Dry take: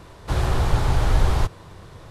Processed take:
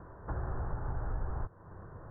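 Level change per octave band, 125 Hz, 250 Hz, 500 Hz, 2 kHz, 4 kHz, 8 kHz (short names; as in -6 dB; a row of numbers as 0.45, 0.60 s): -16.0 dB, -15.5 dB, -15.5 dB, -18.5 dB, under -40 dB, under -40 dB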